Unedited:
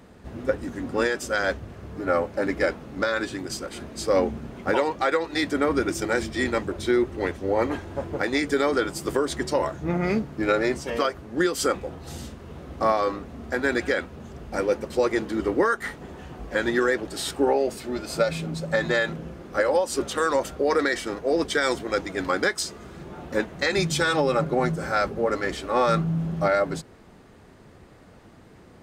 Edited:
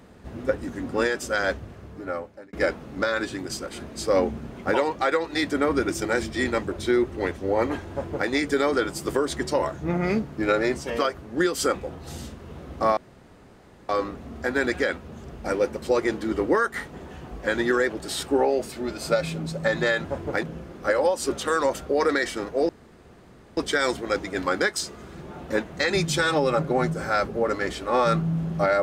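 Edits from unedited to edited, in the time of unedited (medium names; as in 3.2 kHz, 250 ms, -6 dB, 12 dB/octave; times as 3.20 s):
1.56–2.53 s: fade out
7.91–8.29 s: copy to 19.13 s
12.97 s: insert room tone 0.92 s
21.39 s: insert room tone 0.88 s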